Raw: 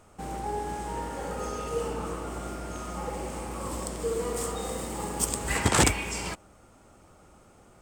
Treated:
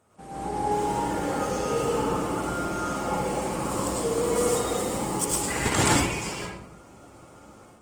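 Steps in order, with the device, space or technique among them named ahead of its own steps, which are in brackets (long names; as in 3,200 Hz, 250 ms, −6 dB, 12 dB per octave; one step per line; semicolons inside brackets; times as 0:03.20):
far-field microphone of a smart speaker (convolution reverb RT60 0.70 s, pre-delay 93 ms, DRR −4 dB; high-pass filter 95 Hz 12 dB per octave; automatic gain control gain up to 8 dB; level −6.5 dB; Opus 20 kbit/s 48,000 Hz)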